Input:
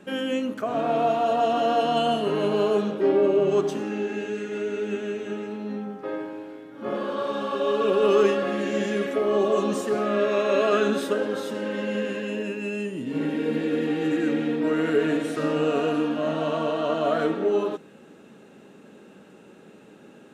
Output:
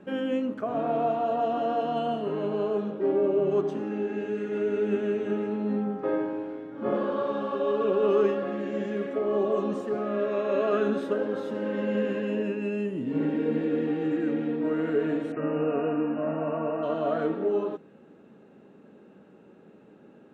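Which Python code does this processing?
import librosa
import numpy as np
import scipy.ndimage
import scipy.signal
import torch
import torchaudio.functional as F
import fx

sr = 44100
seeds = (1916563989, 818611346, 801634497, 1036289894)

y = fx.brickwall_lowpass(x, sr, high_hz=2900.0, at=(15.32, 16.83))
y = fx.lowpass(y, sr, hz=1100.0, slope=6)
y = fx.rider(y, sr, range_db=10, speed_s=2.0)
y = y * 10.0 ** (-2.5 / 20.0)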